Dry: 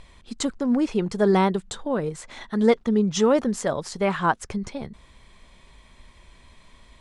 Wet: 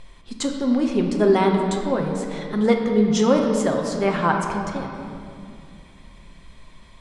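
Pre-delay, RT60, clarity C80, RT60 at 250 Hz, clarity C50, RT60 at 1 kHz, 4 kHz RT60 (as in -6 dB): 6 ms, 2.5 s, 5.0 dB, 3.5 s, 3.5 dB, 2.4 s, 1.7 s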